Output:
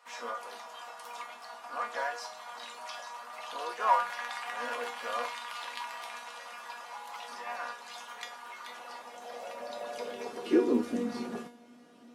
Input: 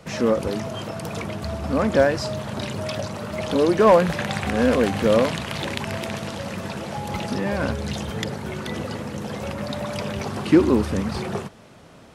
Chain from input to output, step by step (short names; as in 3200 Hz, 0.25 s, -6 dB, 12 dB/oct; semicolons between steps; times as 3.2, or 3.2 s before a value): harmoniser +3 st -9 dB, +4 st -16 dB; high-pass sweep 1000 Hz -> 260 Hz, 8.64–11.12; resonator 240 Hz, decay 0.34 s, harmonics all, mix 90%